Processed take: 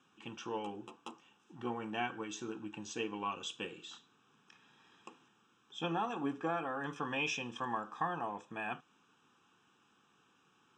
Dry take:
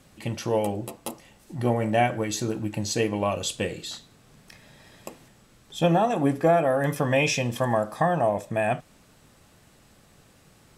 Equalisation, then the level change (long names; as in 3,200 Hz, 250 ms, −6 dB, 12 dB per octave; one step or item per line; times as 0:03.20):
high-pass filter 360 Hz 12 dB per octave
high-frequency loss of the air 150 metres
phaser with its sweep stopped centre 3,000 Hz, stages 8
−4.5 dB